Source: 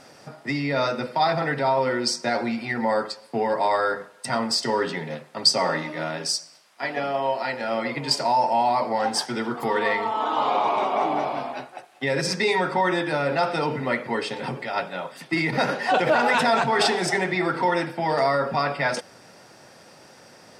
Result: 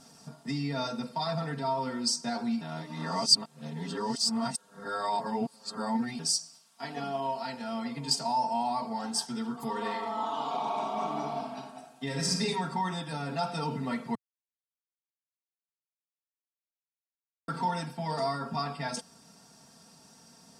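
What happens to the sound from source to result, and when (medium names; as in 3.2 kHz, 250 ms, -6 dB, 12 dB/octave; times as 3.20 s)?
2.61–6.19 s: reverse
9.74–12.41 s: reverb throw, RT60 1 s, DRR 2 dB
14.15–17.48 s: mute
whole clip: comb 4.4 ms, depth 81%; gain riding within 4 dB 2 s; graphic EQ 125/500/2000/8000 Hz +7/-10/-12/+5 dB; trim -7.5 dB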